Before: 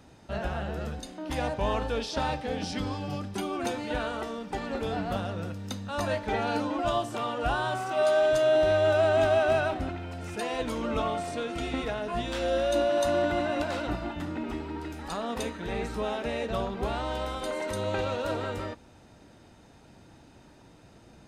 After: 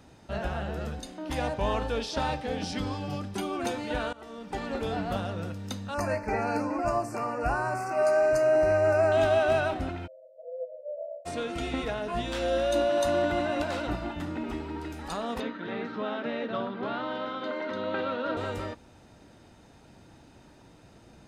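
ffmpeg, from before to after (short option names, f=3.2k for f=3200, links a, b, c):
-filter_complex "[0:a]asettb=1/sr,asplit=3[a][b][c];[a]atrim=end=5.944[d];[b]atrim=start=5.94:end=9.12,asetpts=PTS-STARTPTS,afade=t=in:d=0.004:c=qsin,afade=t=out:st=3.176:d=0.004:c=qsin,asuperstop=centerf=3400:order=8:qfactor=1.9[e];[c]atrim=start=9.116[f];[d][e]acrossfade=d=0.004:c1=hsin:c2=qsin[g];[g][f]acrossfade=d=0.004:c1=qsin:c2=hsin,asplit=3[h][i][j];[h]afade=t=out:st=10.06:d=0.02[k];[i]asuperpass=centerf=570:order=20:qfactor=3.5,afade=t=in:st=10.06:d=0.02,afade=t=out:st=11.25:d=0.02[l];[j]afade=t=in:st=11.25:d=0.02[m];[k][l][m]amix=inputs=3:normalize=0,asettb=1/sr,asplit=3[n][o][p];[n]atrim=end=15.404[q];[o]atrim=start=15.4:end=18.37,asetpts=PTS-STARTPTS,afade=t=in:d=0.004:c=qsin,afade=t=out:st=2.966:d=0.004:c=qsin,highpass=f=150:w=0.5412,highpass=f=150:w=1.3066,equalizer=f=180:t=q:w=4:g=-4,equalizer=f=260:t=q:w=4:g=6,equalizer=f=410:t=q:w=4:g=-4,equalizer=f=790:t=q:w=4:g=-5,equalizer=f=1.4k:t=q:w=4:g=5,equalizer=f=2.5k:t=q:w=4:g=-5,lowpass=f=3.8k:w=0.5412,lowpass=f=3.8k:w=1.3066[r];[p]atrim=start=18.366[s];[q][r]acrossfade=d=0.004:c1=hsin:c2=qsin[t];[t][s]acrossfade=d=0.004:c1=qsin:c2=hsin,asplit=2[u][v];[u]atrim=end=4.13,asetpts=PTS-STARTPTS,afade=t=out:st=4.126:d=0.004:c=hsin:silence=0.0841395[w];[v]atrim=start=4.13,asetpts=PTS-STARTPTS,afade=t=in:d=0.47:silence=0.0841395[x];[w][x]concat=n=2:v=0:a=1"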